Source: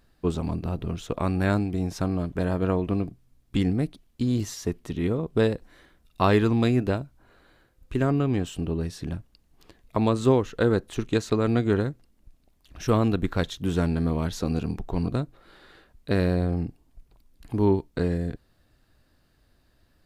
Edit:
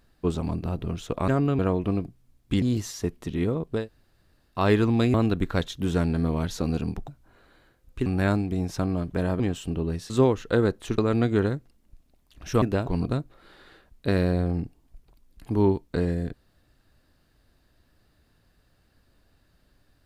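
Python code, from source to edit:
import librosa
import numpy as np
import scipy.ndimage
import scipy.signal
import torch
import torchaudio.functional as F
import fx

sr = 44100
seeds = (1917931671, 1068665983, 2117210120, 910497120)

y = fx.edit(x, sr, fx.swap(start_s=1.28, length_s=1.34, other_s=8.0, other_length_s=0.31),
    fx.cut(start_s=3.65, length_s=0.6),
    fx.room_tone_fill(start_s=5.4, length_s=0.81, crossfade_s=0.24),
    fx.swap(start_s=6.77, length_s=0.25, other_s=12.96, other_length_s=1.94),
    fx.cut(start_s=9.01, length_s=1.17),
    fx.cut(start_s=11.06, length_s=0.26), tone=tone)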